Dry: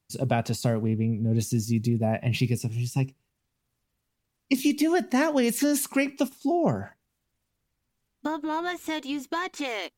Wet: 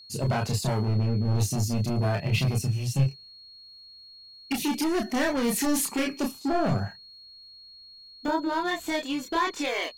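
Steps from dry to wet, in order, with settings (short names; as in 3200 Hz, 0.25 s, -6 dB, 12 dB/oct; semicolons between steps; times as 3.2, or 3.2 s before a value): hard clip -24 dBFS, distortion -9 dB; chorus voices 6, 0.22 Hz, delay 29 ms, depth 1.4 ms; whine 4300 Hz -52 dBFS; gain +5.5 dB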